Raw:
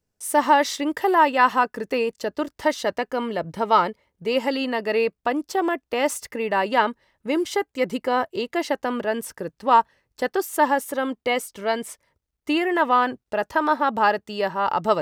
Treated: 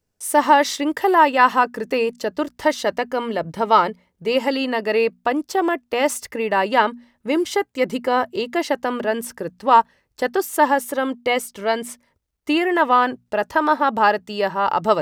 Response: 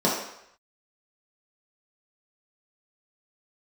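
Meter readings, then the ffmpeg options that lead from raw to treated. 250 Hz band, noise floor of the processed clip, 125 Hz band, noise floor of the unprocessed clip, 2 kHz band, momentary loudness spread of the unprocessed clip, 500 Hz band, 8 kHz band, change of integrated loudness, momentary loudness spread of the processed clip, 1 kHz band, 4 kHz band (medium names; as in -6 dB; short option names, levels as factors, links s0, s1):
+2.5 dB, -73 dBFS, +2.5 dB, -81 dBFS, +3.0 dB, 9 LU, +3.0 dB, +3.0 dB, +3.0 dB, 9 LU, +3.0 dB, +3.0 dB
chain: -af "bandreject=f=60:t=h:w=6,bandreject=f=120:t=h:w=6,bandreject=f=180:t=h:w=6,bandreject=f=240:t=h:w=6,volume=1.41"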